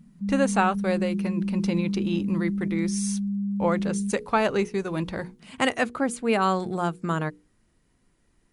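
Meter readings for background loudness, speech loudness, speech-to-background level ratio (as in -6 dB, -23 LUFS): -28.5 LUFS, -27.0 LUFS, 1.5 dB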